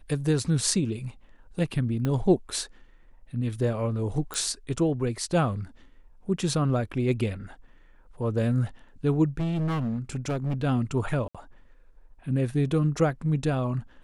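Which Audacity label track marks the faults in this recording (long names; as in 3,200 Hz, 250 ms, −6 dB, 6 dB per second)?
2.050000	2.050000	click −16 dBFS
4.340000	4.340000	click
9.370000	10.640000	clipping −24.5 dBFS
11.280000	11.350000	drop-out 66 ms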